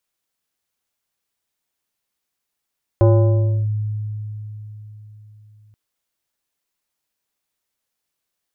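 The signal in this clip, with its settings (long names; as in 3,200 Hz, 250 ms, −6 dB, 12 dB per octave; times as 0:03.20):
two-operator FM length 2.73 s, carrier 106 Hz, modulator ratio 4.29, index 0.9, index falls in 0.66 s linear, decay 4.09 s, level −8 dB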